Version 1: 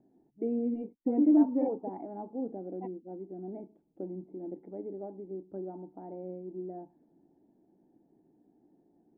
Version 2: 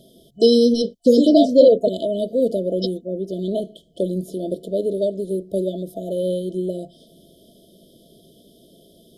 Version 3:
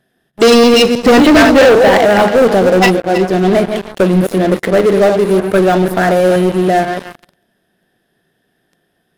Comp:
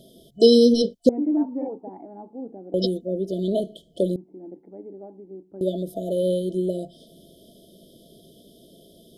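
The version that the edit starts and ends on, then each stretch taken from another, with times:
2
0:01.09–0:02.74: punch in from 1
0:04.16–0:05.61: punch in from 1
not used: 3

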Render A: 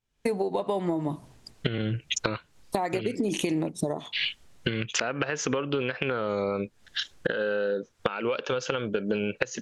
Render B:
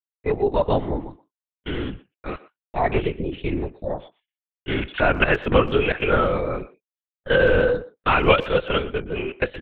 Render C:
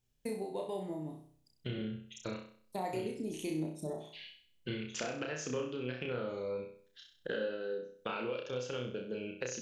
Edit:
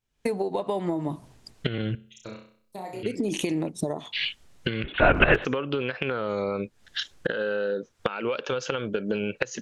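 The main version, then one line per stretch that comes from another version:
A
0:01.95–0:03.03: punch in from C
0:04.84–0:05.45: punch in from B

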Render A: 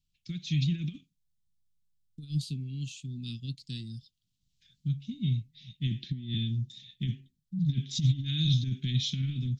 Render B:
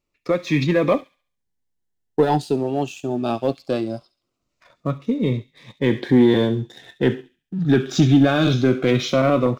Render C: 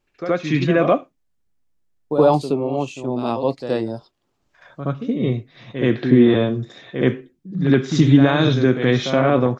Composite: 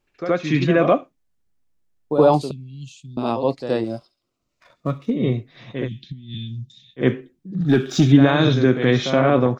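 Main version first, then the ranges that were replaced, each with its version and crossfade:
C
0:02.51–0:03.17: punch in from A
0:03.84–0:05.10: punch in from B
0:05.84–0:07.01: punch in from A, crossfade 0.10 s
0:07.61–0:08.12: punch in from B

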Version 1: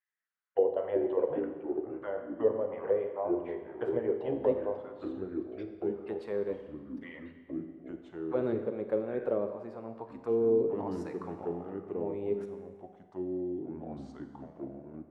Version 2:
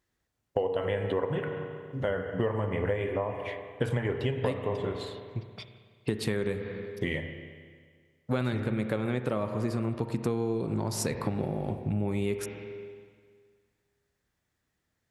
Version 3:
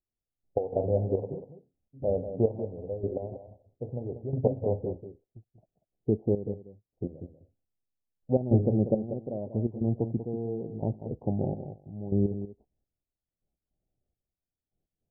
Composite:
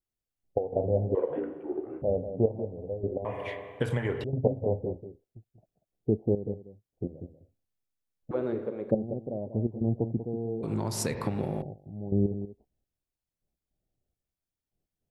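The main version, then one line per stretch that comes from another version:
3
0:01.15–0:02.02: punch in from 1
0:03.25–0:04.24: punch in from 2
0:08.31–0:08.91: punch in from 1
0:10.63–0:11.62: punch in from 2

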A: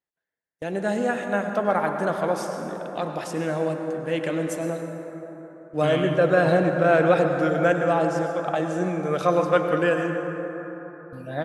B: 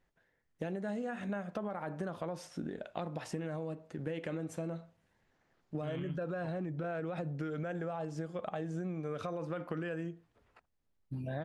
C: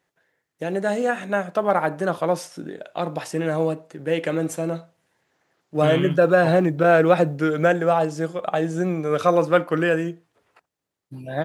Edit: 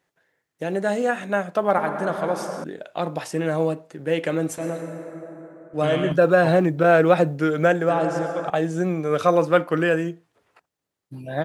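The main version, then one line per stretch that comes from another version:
C
0:01.78–0:02.64: punch in from A
0:04.58–0:06.12: punch in from A
0:07.89–0:08.50: punch in from A
not used: B

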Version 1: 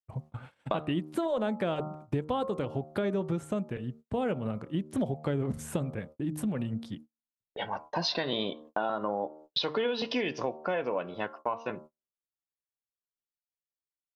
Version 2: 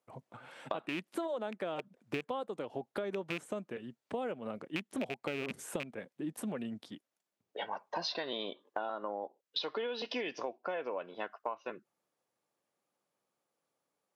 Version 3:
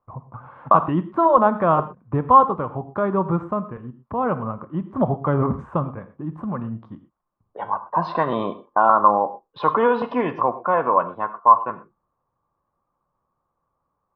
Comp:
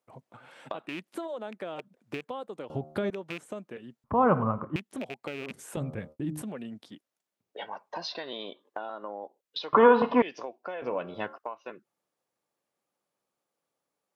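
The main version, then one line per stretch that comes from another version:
2
0:02.70–0:03.10: punch in from 1
0:04.04–0:04.76: punch in from 3
0:05.77–0:06.42: punch in from 1
0:09.73–0:10.22: punch in from 3
0:10.82–0:11.38: punch in from 1

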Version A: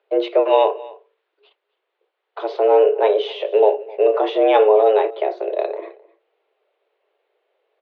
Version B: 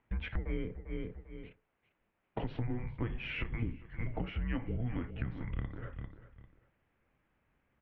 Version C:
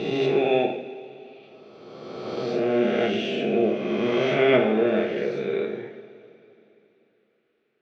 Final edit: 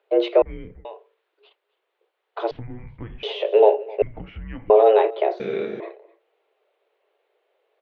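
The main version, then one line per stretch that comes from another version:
A
0:00.42–0:00.85: punch in from B
0:02.51–0:03.23: punch in from B
0:04.02–0:04.70: punch in from B
0:05.40–0:05.80: punch in from C

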